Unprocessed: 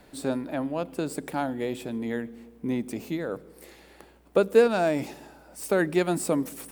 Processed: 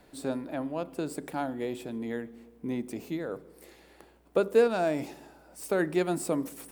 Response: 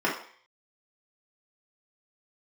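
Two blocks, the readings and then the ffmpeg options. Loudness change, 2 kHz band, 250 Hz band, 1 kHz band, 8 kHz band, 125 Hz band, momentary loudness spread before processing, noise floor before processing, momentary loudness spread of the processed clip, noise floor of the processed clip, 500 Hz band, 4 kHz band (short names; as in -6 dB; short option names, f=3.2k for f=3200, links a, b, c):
-3.5 dB, -4.5 dB, -4.0 dB, -3.5 dB, -4.5 dB, -4.5 dB, 16 LU, -55 dBFS, 16 LU, -59 dBFS, -3.5 dB, -4.5 dB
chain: -filter_complex "[0:a]asplit=2[a][b];[b]lowpass=1.9k[c];[1:a]atrim=start_sample=2205[d];[c][d]afir=irnorm=-1:irlink=0,volume=-27.5dB[e];[a][e]amix=inputs=2:normalize=0,volume=-4.5dB"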